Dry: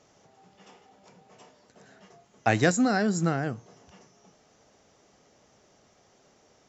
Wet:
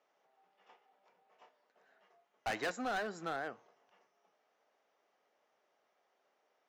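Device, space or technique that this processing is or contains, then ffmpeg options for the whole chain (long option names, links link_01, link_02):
walkie-talkie: -af "highpass=580,lowpass=2800,asoftclip=type=hard:threshold=-27.5dB,agate=range=-7dB:threshold=-55dB:ratio=16:detection=peak,volume=-4.5dB"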